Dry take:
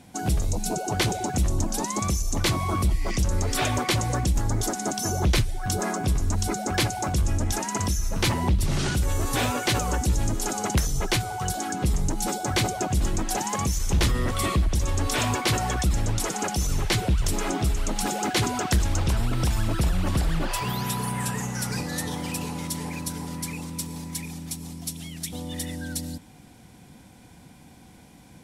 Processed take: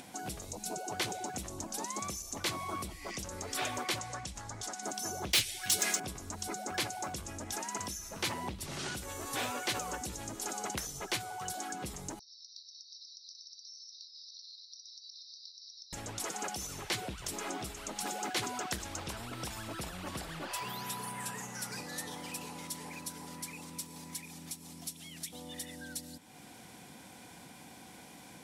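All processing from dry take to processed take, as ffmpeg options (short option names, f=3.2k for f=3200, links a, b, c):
-filter_complex "[0:a]asettb=1/sr,asplit=3[a][b][c];[a]atrim=end=3.994[d];[b]atrim=start=3.99:end=4.83,asetpts=PTS-STARTPTS,afade=t=in:d=0.004:c=qsin,afade=t=out:st=0.836:d=0.004:c=qsin,lowpass=8.2k,equalizer=f=340:w=1:g=-9.5[e];[c]atrim=start=4.826[f];[d][e]acrossfade=d=0.004:c1=hsin:c2=qsin[g];[g][f]acrossfade=d=0.004:c1=qsin:c2=hsin,asettb=1/sr,asplit=3[h][i][j];[h]atrim=end=5.334[k];[i]atrim=start=5.33:end=6,asetpts=PTS-STARTPTS,afade=t=in:d=0.004:c=qsin,afade=t=out:st=0.666:d=0.004:c=qsin,highshelf=f=1.7k:t=q:w=1.5:g=14,asoftclip=type=hard:threshold=-14dB[l];[j]atrim=start=5.996[m];[k][l]acrossfade=d=0.004:c1=hsin:c2=qsin[n];[n][m]acrossfade=d=0.004:c1=qsin:c2=hsin,asettb=1/sr,asplit=3[o][p][q];[o]atrim=end=12.194[r];[p]atrim=start=12.19:end=15.93,asetpts=PTS-STARTPTS,afade=t=in:d=0.004:c=qsin,afade=t=out:st=3.736:d=0.004:c=qsin,asuperpass=centerf=4700:order=20:qfactor=2.3,acompressor=threshold=-47dB:ratio=6:attack=3.2:release=140:knee=1:detection=peak[s];[q]atrim=start=15.926[t];[r][s]acrossfade=d=0.004:c1=hsin:c2=qsin[u];[u][t]acrossfade=d=0.004:c1=qsin:c2=hsin,highpass=f=450:p=1,acompressor=mode=upward:threshold=-32dB:ratio=2.5,volume=-8.5dB"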